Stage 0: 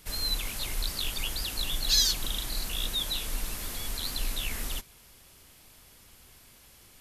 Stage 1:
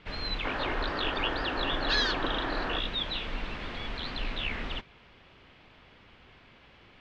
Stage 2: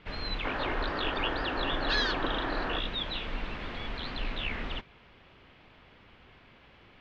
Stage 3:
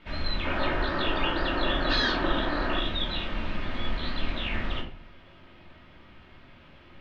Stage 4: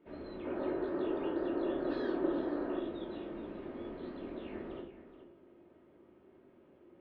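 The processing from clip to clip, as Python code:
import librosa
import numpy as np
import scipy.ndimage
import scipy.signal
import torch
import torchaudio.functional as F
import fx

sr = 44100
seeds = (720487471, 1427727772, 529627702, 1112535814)

y1 = scipy.signal.sosfilt(scipy.signal.butter(4, 3100.0, 'lowpass', fs=sr, output='sos'), x)
y1 = fx.low_shelf(y1, sr, hz=75.0, db=-9.5)
y1 = fx.spec_box(y1, sr, start_s=0.45, length_s=2.34, low_hz=240.0, high_hz=1900.0, gain_db=9)
y1 = y1 * librosa.db_to_amplitude(5.0)
y2 = fx.high_shelf(y1, sr, hz=5800.0, db=-8.5)
y3 = fx.room_shoebox(y2, sr, seeds[0], volume_m3=380.0, walls='furnished', distance_m=2.7)
y3 = y3 * librosa.db_to_amplitude(-1.5)
y4 = fx.bandpass_q(y3, sr, hz=380.0, q=2.9)
y4 = y4 + 10.0 ** (-12.5 / 20.0) * np.pad(y4, (int(425 * sr / 1000.0), 0))[:len(y4)]
y4 = y4 * librosa.db_to_amplitude(1.5)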